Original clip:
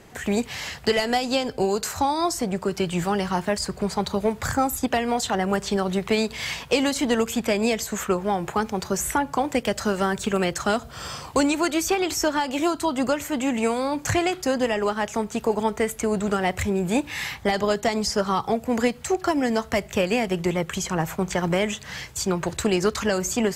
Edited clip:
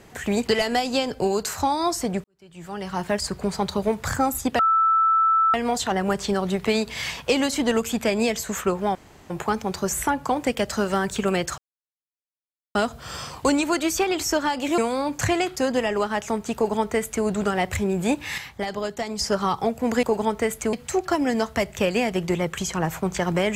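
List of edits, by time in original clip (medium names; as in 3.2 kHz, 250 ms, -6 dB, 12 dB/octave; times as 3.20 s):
0.47–0.85 s: delete
2.62–3.49 s: fade in quadratic
4.97 s: add tone 1.32 kHz -15.5 dBFS 0.95 s
8.38 s: insert room tone 0.35 s
10.66 s: insert silence 1.17 s
12.69–13.64 s: delete
15.41–16.11 s: copy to 18.89 s
17.24–18.05 s: gain -6 dB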